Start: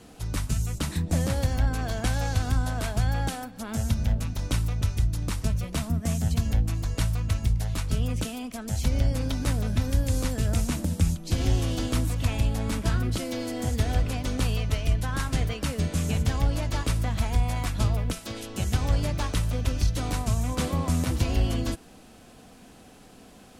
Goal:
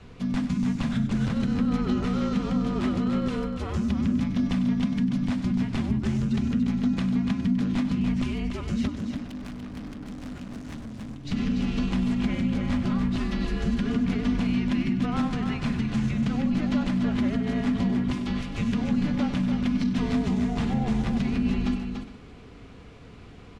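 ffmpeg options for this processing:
ffmpeg -i in.wav -filter_complex "[0:a]lowpass=3400,asettb=1/sr,asplit=3[link_01][link_02][link_03];[link_01]atrim=end=8.874[link_04];[link_02]atrim=start=8.87:end=11.25,asetpts=PTS-STARTPTS,afade=type=in:duration=0.004:curve=qsin,afade=type=out:start_time=2.376:duration=0.004:curve=qsin,aeval=exprs='(tanh(112*val(0)+0.35)-tanh(0.35))/112':channel_layout=same[link_05];[link_03]atrim=start=11.246[link_06];[link_04][link_05]acrossfade=duration=0.004:curve1=hsin:curve2=qsin[link_07];[link_07][link_06]acrossfade=duration=0.004:curve1=qsin:curve2=hsin,bandreject=frequency=1200:width=30,afreqshift=-300,alimiter=limit=-22.5dB:level=0:latency=1:release=65,aecho=1:1:97|289|411:0.224|0.473|0.133,volume=3.5dB" out.wav

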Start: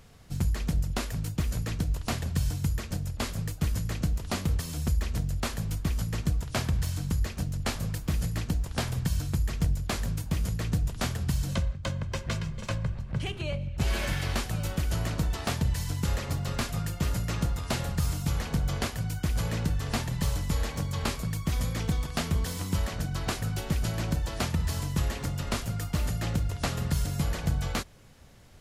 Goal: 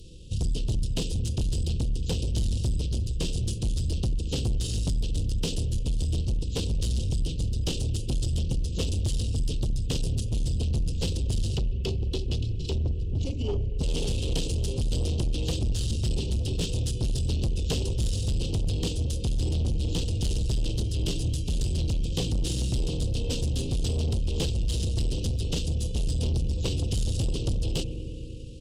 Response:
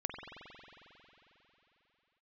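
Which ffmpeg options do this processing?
-filter_complex "[0:a]asuperstop=centerf=1700:order=20:qfactor=0.56,asplit=2[link_01][link_02];[1:a]atrim=start_sample=2205[link_03];[link_02][link_03]afir=irnorm=-1:irlink=0,volume=-3.5dB[link_04];[link_01][link_04]amix=inputs=2:normalize=0,asoftclip=type=tanh:threshold=-26dB,aeval=exprs='val(0)+0.002*(sin(2*PI*60*n/s)+sin(2*PI*2*60*n/s)/2+sin(2*PI*3*60*n/s)/3+sin(2*PI*4*60*n/s)/4+sin(2*PI*5*60*n/s)/5)':channel_layout=same,asetrate=31183,aresample=44100,atempo=1.41421,volume=4dB"

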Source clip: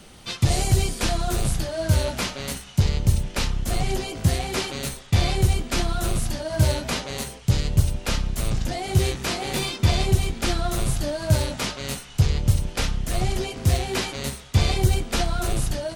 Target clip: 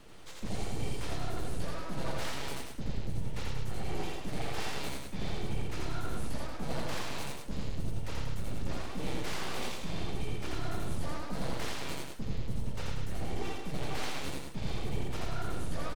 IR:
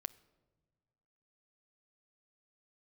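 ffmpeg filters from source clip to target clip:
-af "highshelf=frequency=3700:gain=-10.5,aecho=1:1:2.2:0.31,areverse,acompressor=threshold=-27dB:ratio=5,areverse,aeval=exprs='abs(val(0))':channel_layout=same,aecho=1:1:84.55|186.6:0.891|0.562,volume=-5.5dB"

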